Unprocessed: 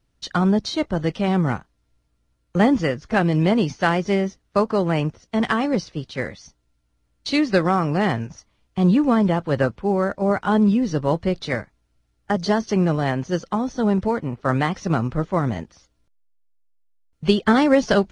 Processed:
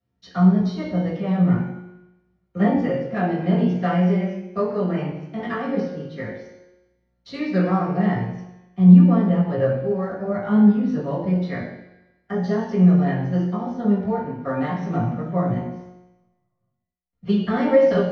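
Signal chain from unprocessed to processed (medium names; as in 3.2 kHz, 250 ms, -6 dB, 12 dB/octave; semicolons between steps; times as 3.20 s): chorus 0.12 Hz, delay 15.5 ms, depth 6.4 ms; feedback comb 180 Hz, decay 0.97 s, mix 80%; reverberation RT60 0.85 s, pre-delay 3 ms, DRR -6.5 dB; trim -5 dB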